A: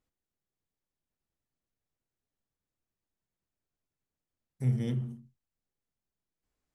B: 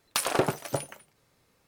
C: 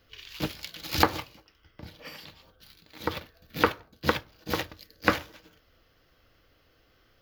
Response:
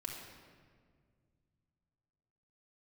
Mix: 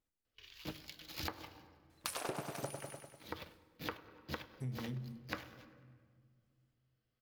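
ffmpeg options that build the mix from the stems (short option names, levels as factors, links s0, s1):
-filter_complex "[0:a]volume=0.501,asplit=2[s0][s1];[s1]volume=0.237[s2];[1:a]adelay=1900,volume=0.562,asplit=2[s3][s4];[s4]volume=0.447[s5];[2:a]agate=range=0.224:threshold=0.00316:ratio=16:detection=peak,bandreject=f=1400:w=29,adelay=250,volume=0.237,asplit=3[s6][s7][s8];[s7]volume=0.2[s9];[s8]volume=0.0631[s10];[3:a]atrim=start_sample=2205[s11];[s2][s9]amix=inputs=2:normalize=0[s12];[s12][s11]afir=irnorm=-1:irlink=0[s13];[s5][s10]amix=inputs=2:normalize=0,aecho=0:1:99|198|297|396|495|594|693|792:1|0.56|0.314|0.176|0.0983|0.0551|0.0308|0.0173[s14];[s0][s3][s6][s13][s14]amix=inputs=5:normalize=0,acompressor=threshold=0.0112:ratio=4"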